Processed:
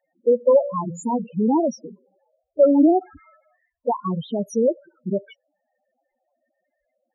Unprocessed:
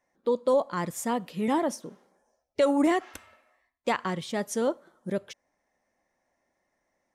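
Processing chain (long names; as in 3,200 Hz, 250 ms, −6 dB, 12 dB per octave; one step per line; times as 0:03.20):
0:00.52–0:01.27: hum removal 57.11 Hz, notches 10
spectral peaks only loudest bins 4
level +9 dB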